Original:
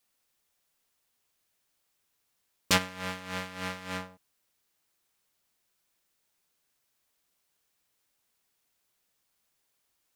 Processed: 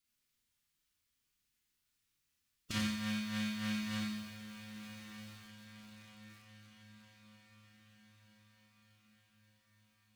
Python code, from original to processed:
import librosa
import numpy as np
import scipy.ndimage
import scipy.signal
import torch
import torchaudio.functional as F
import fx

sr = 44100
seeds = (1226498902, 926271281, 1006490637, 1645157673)

y = fx.pitch_keep_formants(x, sr, semitones=2.5)
y = fx.tone_stack(y, sr, knobs='6-0-2')
y = fx.over_compress(y, sr, threshold_db=-45.0, ratio=-1.0)
y = fx.high_shelf(y, sr, hz=4600.0, db=-9.0)
y = fx.echo_diffused(y, sr, ms=1232, feedback_pct=55, wet_db=-11.0)
y = fx.rev_schroeder(y, sr, rt60_s=0.51, comb_ms=26, drr_db=-1.0)
y = fx.echo_crushed(y, sr, ms=89, feedback_pct=35, bits=11, wet_db=-4.5)
y = y * 10.0 ** (11.0 / 20.0)